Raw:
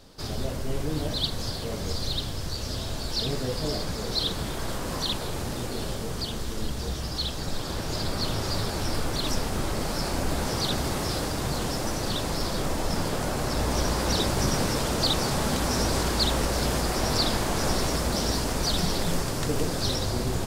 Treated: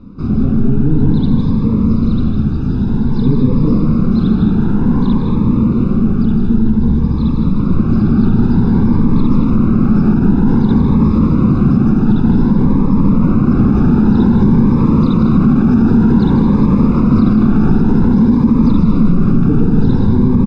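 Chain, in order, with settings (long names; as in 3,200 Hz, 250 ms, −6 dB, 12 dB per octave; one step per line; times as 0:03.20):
low-pass filter 1,100 Hz 12 dB per octave
parametric band 210 Hz +14 dB 0.99 octaves
mains-hum notches 60/120/180 Hz
comb filter 0.8 ms, depth 84%
single-tap delay 157 ms −8 dB
convolution reverb, pre-delay 3 ms, DRR 5 dB
boost into a limiter +9.5 dB
phaser whose notches keep moving one way rising 0.53 Hz
level −1 dB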